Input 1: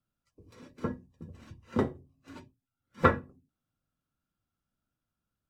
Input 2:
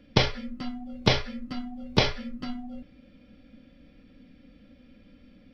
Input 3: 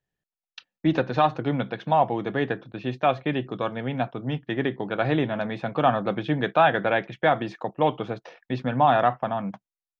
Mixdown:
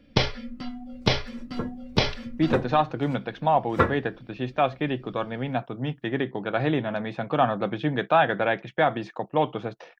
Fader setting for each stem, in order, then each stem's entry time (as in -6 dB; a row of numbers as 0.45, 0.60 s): +1.5, -0.5, -1.0 dB; 0.75, 0.00, 1.55 s